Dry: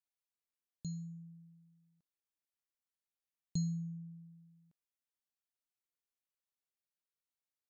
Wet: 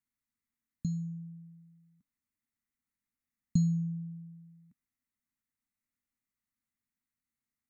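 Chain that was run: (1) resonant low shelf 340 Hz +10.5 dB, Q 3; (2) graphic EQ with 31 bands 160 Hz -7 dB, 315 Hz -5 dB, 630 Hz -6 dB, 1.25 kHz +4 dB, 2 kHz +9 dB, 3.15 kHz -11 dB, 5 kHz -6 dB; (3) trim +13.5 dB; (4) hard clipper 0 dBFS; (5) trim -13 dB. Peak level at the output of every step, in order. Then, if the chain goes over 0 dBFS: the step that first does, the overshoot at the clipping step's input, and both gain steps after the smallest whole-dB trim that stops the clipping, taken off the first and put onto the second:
-13.0 dBFS, -16.0 dBFS, -2.5 dBFS, -2.5 dBFS, -15.5 dBFS; nothing clips

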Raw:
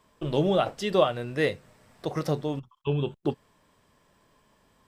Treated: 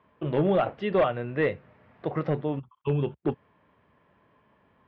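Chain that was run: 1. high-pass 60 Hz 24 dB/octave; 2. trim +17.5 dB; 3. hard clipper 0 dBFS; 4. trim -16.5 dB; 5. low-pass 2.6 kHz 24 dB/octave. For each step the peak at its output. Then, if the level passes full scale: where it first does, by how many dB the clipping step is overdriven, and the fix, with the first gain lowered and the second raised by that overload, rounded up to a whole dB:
-8.0 dBFS, +9.5 dBFS, 0.0 dBFS, -16.5 dBFS, -15.0 dBFS; step 2, 9.5 dB; step 2 +7.5 dB, step 4 -6.5 dB

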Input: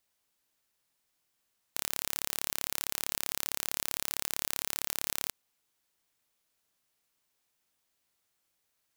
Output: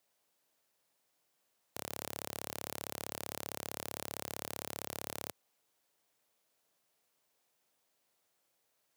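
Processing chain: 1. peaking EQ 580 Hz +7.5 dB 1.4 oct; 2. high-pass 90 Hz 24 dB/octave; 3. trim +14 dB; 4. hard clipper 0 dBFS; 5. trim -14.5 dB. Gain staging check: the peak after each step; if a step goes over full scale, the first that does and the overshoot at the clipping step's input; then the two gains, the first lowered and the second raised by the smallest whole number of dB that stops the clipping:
-4.5 dBFS, -4.5 dBFS, +9.5 dBFS, 0.0 dBFS, -14.5 dBFS; step 3, 9.5 dB; step 3 +4 dB, step 5 -4.5 dB

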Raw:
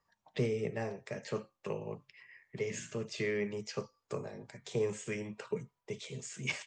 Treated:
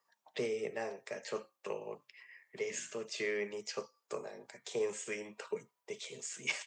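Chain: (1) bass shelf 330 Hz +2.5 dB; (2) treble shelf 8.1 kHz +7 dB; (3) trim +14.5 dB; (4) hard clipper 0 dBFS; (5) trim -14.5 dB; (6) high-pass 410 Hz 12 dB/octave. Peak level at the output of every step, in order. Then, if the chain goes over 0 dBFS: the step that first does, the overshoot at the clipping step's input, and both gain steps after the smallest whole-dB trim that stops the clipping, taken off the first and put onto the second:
-18.0 dBFS, -18.0 dBFS, -3.5 dBFS, -3.5 dBFS, -18.0 dBFS, -20.0 dBFS; nothing clips

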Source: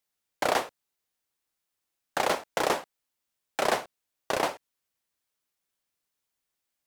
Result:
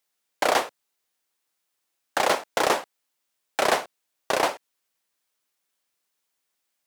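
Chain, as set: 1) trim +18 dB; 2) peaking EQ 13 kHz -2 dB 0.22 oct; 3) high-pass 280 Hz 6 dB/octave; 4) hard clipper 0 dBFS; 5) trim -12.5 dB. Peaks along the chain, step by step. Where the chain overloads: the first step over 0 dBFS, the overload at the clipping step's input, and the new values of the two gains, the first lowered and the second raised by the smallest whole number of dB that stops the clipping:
+8.0 dBFS, +8.0 dBFS, +7.5 dBFS, 0.0 dBFS, -12.5 dBFS; step 1, 7.5 dB; step 1 +10 dB, step 5 -4.5 dB

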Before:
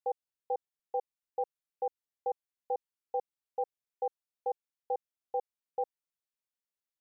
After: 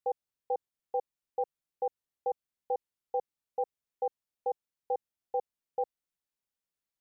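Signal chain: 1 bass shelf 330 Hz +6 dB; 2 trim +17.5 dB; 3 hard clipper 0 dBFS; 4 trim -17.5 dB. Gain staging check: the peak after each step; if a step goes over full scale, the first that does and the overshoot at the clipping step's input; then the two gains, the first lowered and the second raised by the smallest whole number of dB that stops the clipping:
-22.5 dBFS, -5.0 dBFS, -5.0 dBFS, -22.5 dBFS; nothing clips

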